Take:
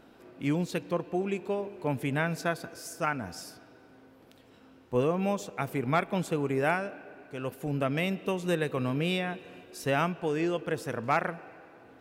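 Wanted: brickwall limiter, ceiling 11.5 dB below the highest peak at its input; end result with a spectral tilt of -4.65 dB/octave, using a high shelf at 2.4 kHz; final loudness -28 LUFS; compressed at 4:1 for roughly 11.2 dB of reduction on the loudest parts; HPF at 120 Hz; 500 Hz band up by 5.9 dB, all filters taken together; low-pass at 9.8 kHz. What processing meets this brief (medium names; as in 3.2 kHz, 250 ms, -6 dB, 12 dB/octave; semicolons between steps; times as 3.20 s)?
high-pass 120 Hz; low-pass 9.8 kHz; peaking EQ 500 Hz +7 dB; treble shelf 2.4 kHz +4.5 dB; compression 4:1, threshold -31 dBFS; trim +11.5 dB; peak limiter -17.5 dBFS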